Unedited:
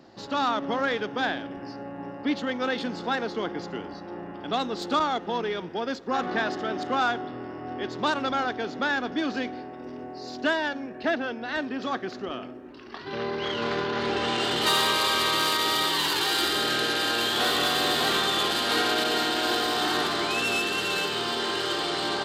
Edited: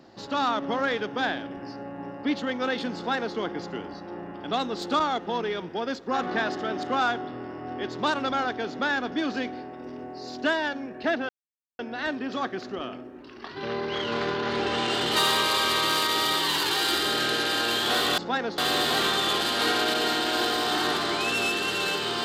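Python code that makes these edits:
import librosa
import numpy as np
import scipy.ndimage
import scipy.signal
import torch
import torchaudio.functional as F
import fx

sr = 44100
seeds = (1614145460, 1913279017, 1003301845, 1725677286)

y = fx.edit(x, sr, fx.duplicate(start_s=2.96, length_s=0.4, to_s=17.68),
    fx.insert_silence(at_s=11.29, length_s=0.5), tone=tone)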